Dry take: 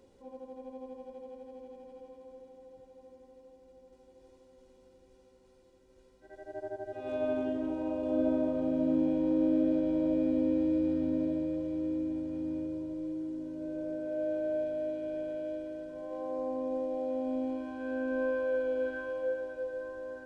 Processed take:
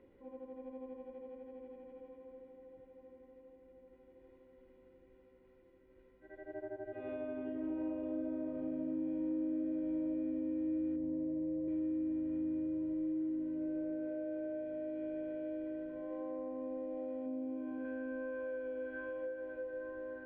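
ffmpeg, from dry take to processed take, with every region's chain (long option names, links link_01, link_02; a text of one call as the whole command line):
ffmpeg -i in.wav -filter_complex "[0:a]asettb=1/sr,asplit=3[link_01][link_02][link_03];[link_01]atrim=end=10.964[link_04];[link_02]atrim=start=10.96:end=11.68,asetpts=PTS-STARTPTS,afade=type=in:duration=0.004:curve=qsin,afade=type=out:start_time=0.716:duration=0.004:curve=qsin,lowpass=1800,equalizer=frequency=1400:width_type=o:width=0.75:gain=-13,asplit=2[link_05][link_06];[link_06]adelay=17,volume=-7dB[link_07];[link_05][link_07]amix=inputs=2:normalize=0,atrim=end_sample=31752[link_08];[link_03]atrim=start=11.676[link_09];[link_04][link_08]acrossfade=duration=0.004:curve1=hsin:curve2=qsin[link_10];[link_10][link_09]acrossfade=duration=0.004:curve1=qsin:curve2=hsin,asettb=1/sr,asplit=3[link_11][link_12][link_13];[link_11]atrim=end=17.264[link_14];[link_12]atrim=start=17.26:end=17.85,asetpts=PTS-STARTPTS,afade=type=in:duration=0.004:curve=qsin,afade=type=out:start_time=0.586:duration=0.004:curve=qsin,highpass=frequency=170:poles=1,tiltshelf=frequency=650:gain=5.5,bandreject=frequency=1800:width=13[link_15];[link_13]atrim=start=17.846[link_16];[link_14][link_15]acrossfade=duration=0.004:curve1=hsin:curve2=qsin[link_17];[link_17][link_16]acrossfade=duration=0.004:curve1=qsin:curve2=hsin,lowpass=frequency=2700:width=0.5412,lowpass=frequency=2700:width=1.3066,acompressor=threshold=-36dB:ratio=6,equalizer=frequency=315:width_type=o:width=0.33:gain=6,equalizer=frequency=800:width_type=o:width=0.33:gain=-5,equalizer=frequency=2000:width_type=o:width=0.33:gain=7,volume=-3dB" out.wav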